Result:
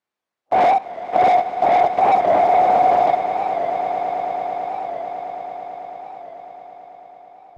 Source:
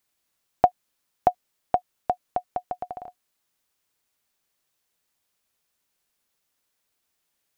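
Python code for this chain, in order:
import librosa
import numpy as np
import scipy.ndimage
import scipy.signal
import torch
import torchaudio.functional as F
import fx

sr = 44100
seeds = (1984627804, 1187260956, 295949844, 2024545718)

p1 = fx.phase_scramble(x, sr, seeds[0], window_ms=200)
p2 = fx.leveller(p1, sr, passes=5)
p3 = fx.over_compress(p2, sr, threshold_db=-25.0, ratio=-1.0)
p4 = p2 + F.gain(torch.from_numpy(p3), 2.0).numpy()
p5 = fx.bandpass_q(p4, sr, hz=600.0, q=0.52)
p6 = p5 + fx.echo_swell(p5, sr, ms=110, loudest=8, wet_db=-16.5, dry=0)
y = fx.record_warp(p6, sr, rpm=45.0, depth_cents=100.0)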